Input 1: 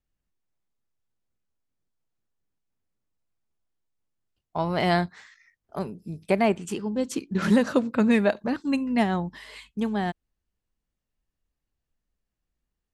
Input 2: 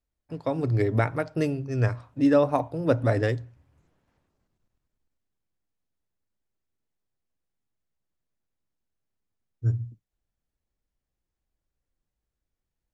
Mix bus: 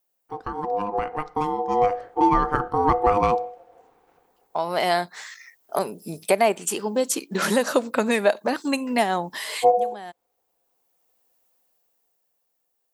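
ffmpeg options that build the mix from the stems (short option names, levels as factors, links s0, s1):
-filter_complex "[0:a]highpass=110,aemphasis=mode=production:type=riaa,acompressor=threshold=0.0141:ratio=2,volume=0.841[s0];[1:a]highpass=f=83:w=0.5412,highpass=f=83:w=1.3066,acompressor=threshold=0.0316:ratio=2.5,aeval=exprs='val(0)*sin(2*PI*610*n/s)':c=same,volume=0.944,asplit=2[s1][s2];[s2]apad=whole_len=570324[s3];[s0][s3]sidechaincompress=threshold=0.00447:ratio=10:attack=23:release=1340[s4];[s4][s1]amix=inputs=2:normalize=0,equalizer=f=630:w=0.72:g=8,dynaudnorm=f=360:g=9:m=3.16"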